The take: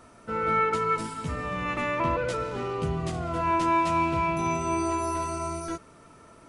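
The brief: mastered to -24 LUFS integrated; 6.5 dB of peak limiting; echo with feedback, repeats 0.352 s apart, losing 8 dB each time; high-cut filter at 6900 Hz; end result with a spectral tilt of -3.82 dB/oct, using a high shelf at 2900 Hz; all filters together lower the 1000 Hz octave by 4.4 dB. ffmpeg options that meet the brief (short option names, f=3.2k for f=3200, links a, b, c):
-af "lowpass=6.9k,equalizer=f=1k:t=o:g=-4.5,highshelf=f=2.9k:g=-4,alimiter=limit=-22.5dB:level=0:latency=1,aecho=1:1:352|704|1056|1408|1760:0.398|0.159|0.0637|0.0255|0.0102,volume=6.5dB"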